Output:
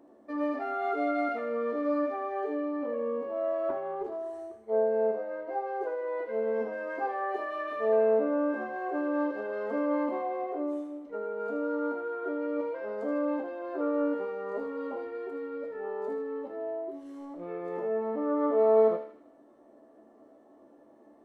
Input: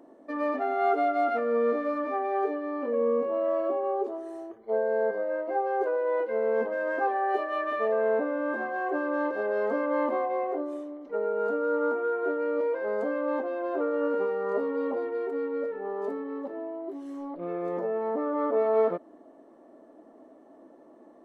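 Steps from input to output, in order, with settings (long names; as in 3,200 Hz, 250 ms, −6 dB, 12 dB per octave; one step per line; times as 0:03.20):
parametric band 92 Hz +14.5 dB 0.45 octaves
tuned comb filter 73 Hz, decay 0.48 s, harmonics all, mix 80%
delay with a high-pass on its return 78 ms, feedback 51%, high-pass 1,900 Hz, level −5.5 dB
0:03.69–0:04.39: highs frequency-modulated by the lows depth 0.16 ms
level +4 dB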